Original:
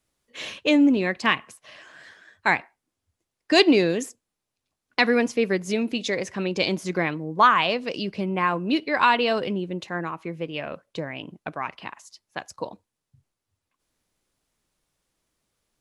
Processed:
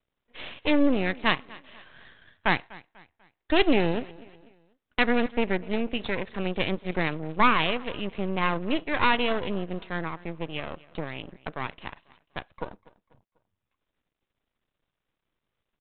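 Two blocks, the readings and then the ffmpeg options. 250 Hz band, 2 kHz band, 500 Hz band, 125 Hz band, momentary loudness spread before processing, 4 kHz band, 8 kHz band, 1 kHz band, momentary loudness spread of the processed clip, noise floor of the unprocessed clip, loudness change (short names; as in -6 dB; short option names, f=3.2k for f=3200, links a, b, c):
-4.0 dB, -3.0 dB, -4.0 dB, -1.0 dB, 17 LU, -4.0 dB, under -35 dB, -4.5 dB, 18 LU, -84 dBFS, -4.0 dB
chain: -af "aecho=1:1:246|492|738:0.0841|0.0345|0.0141,aresample=8000,aeval=exprs='max(val(0),0)':c=same,aresample=44100"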